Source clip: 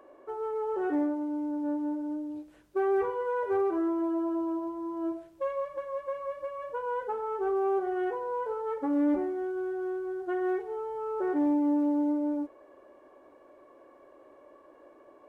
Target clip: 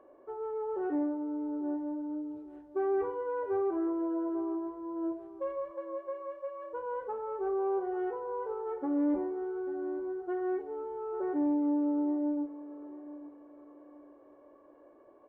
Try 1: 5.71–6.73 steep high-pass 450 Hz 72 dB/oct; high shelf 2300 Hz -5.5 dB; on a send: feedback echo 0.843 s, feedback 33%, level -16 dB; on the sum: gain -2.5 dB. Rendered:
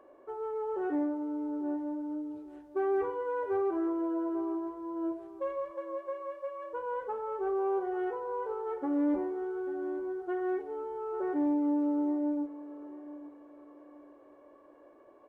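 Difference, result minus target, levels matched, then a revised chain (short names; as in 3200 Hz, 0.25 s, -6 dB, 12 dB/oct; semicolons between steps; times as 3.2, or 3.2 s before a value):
4000 Hz band +6.5 dB
5.71–6.73 steep high-pass 450 Hz 72 dB/oct; high shelf 2300 Hz -16.5 dB; on a send: feedback echo 0.843 s, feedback 33%, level -16 dB; on the sum: gain -2.5 dB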